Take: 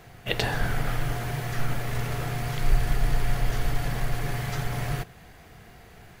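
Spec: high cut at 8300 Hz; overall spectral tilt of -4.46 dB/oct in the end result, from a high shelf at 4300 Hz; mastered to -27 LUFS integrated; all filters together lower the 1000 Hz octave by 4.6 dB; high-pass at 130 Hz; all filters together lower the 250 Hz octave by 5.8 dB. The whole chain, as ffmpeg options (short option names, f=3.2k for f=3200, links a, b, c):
-af "highpass=130,lowpass=8.3k,equalizer=f=250:t=o:g=-8,equalizer=f=1k:t=o:g=-7,highshelf=f=4.3k:g=7.5,volume=6dB"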